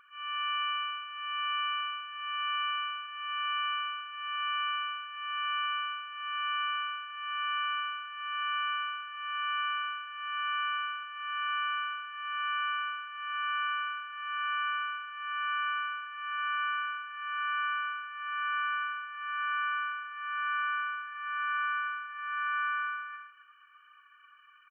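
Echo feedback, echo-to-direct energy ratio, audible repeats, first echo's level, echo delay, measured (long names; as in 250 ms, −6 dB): repeats not evenly spaced, −9.0 dB, 1, −9.0 dB, 261 ms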